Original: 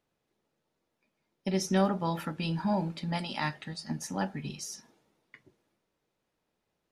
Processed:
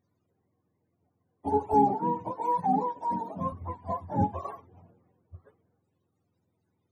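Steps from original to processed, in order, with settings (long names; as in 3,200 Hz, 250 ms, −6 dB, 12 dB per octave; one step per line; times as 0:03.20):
frequency axis turned over on the octave scale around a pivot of 400 Hz
0:01.74–0:03.52: high-pass filter 270 Hz 12 dB per octave
level +6.5 dB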